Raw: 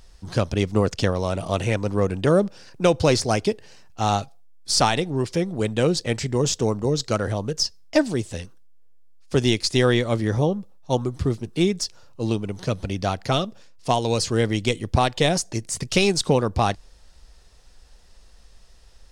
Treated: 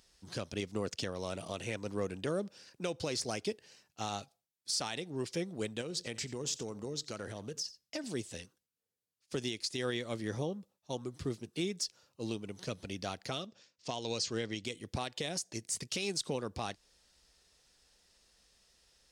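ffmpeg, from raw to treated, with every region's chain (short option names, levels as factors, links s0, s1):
-filter_complex "[0:a]asettb=1/sr,asplit=3[s0][s1][s2];[s0]atrim=end=5.814[s3];[s1]atrim=start=5.81:end=8.04,asetpts=PTS-STARTPTS,afade=t=in:d=0.004:c=qsin,afade=t=out:st=2.226:d=0.004:c=qsin,acompressor=threshold=0.0708:ratio=5:attack=3.2:release=140:knee=1:detection=peak,aecho=1:1:88:0.126,atrim=end_sample=98343[s4];[s2]atrim=start=8.036[s5];[s3][s4]acrossfade=d=0.004:c1=hsin:c2=qsin[s6];[s6][s5]acrossfade=d=0.004:c1=qsin:c2=hsin,asettb=1/sr,asplit=3[s7][s8][s9];[s7]atrim=end=13.464[s10];[s8]atrim=start=13.46:end=14.64,asetpts=PTS-STARTPTS,afade=t=in:d=0.004:c=qsin,afade=t=out:st=1.176:d=0.004:c=qsin,lowpass=f=6800:w=0.5412,lowpass=f=6800:w=1.3066,highshelf=f=3800:g=4[s11];[s9]atrim=start=14.636[s12];[s10][s11]acrossfade=d=0.004:c1=hsin:c2=qsin[s13];[s13][s12]acrossfade=d=0.004:c1=qsin:c2=hsin,highpass=f=370:p=1,equalizer=f=890:w=0.69:g=-7,alimiter=limit=0.141:level=0:latency=1:release=211,volume=0.473"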